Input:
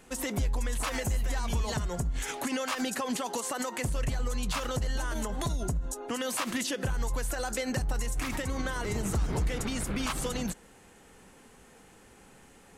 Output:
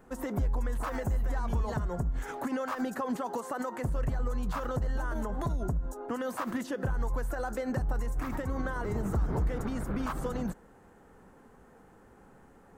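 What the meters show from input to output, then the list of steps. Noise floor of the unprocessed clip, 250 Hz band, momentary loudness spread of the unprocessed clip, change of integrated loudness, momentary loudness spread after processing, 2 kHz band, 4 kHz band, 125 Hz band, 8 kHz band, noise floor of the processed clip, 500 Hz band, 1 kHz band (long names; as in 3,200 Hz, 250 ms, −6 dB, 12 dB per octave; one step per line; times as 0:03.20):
−56 dBFS, 0.0 dB, 2 LU, −1.5 dB, 3 LU, −5.0 dB, −15.0 dB, 0.0 dB, −15.0 dB, −57 dBFS, 0.0 dB, 0.0 dB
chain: flat-topped bell 5,100 Hz −15 dB 2.8 octaves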